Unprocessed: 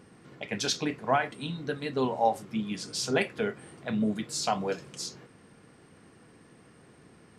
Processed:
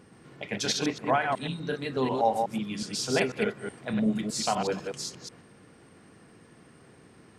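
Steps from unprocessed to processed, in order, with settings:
delay that plays each chunk backwards 123 ms, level −4 dB

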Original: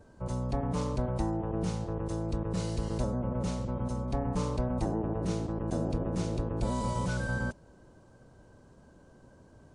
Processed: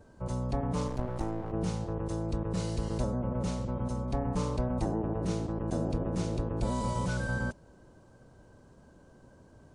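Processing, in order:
0:00.88–0:01.52: gain on one half-wave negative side −12 dB

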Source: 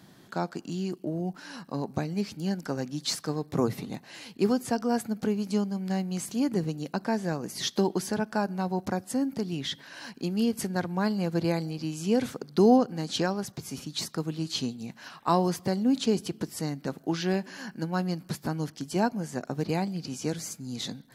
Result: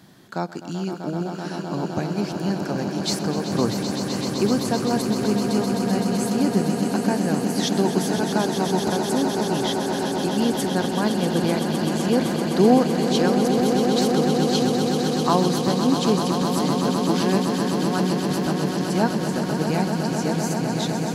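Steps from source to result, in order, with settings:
echo that builds up and dies away 128 ms, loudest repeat 8, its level −9 dB
level +3.5 dB

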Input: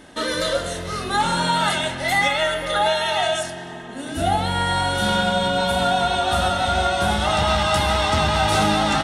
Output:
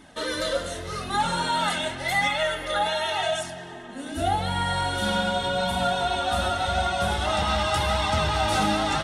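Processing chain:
flanger 0.87 Hz, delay 0.8 ms, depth 3.3 ms, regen −37%
level −1 dB

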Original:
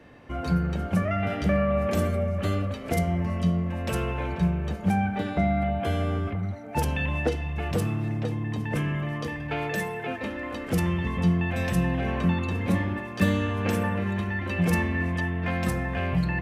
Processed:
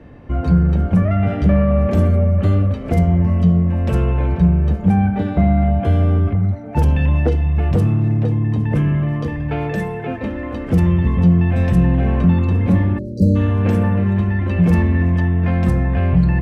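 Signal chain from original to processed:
harmonic generator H 5 −19 dB, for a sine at −9 dBFS
time-frequency box erased 0:12.99–0:13.36, 660–3,900 Hz
spectral tilt −3 dB per octave

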